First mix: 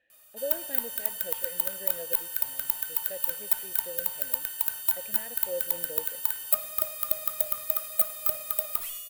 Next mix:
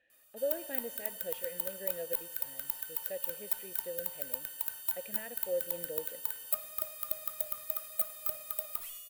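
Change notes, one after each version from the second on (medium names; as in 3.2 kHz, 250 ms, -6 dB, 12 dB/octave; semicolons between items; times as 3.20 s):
background -8.0 dB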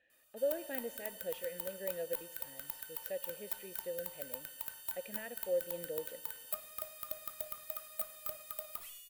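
background: send off; master: add treble shelf 10 kHz -6 dB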